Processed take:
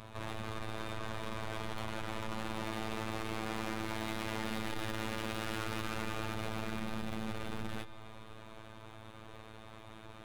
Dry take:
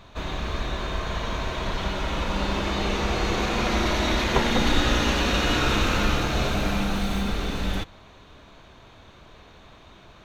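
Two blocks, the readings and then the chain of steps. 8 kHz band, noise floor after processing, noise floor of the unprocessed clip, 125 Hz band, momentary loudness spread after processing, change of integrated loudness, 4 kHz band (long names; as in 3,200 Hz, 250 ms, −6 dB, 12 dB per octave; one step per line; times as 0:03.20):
−14.0 dB, −51 dBFS, −50 dBFS, −14.5 dB, 14 LU, −14.5 dB, −16.5 dB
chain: running median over 9 samples
in parallel at −1.5 dB: downward compressor, threshold −37 dBFS, peak gain reduction 20 dB
on the sum: tube saturation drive 31 dB, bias 0.4
phases set to zero 110 Hz
bucket-brigade delay 133 ms, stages 4,096, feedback 71%, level −17 dB
level −3 dB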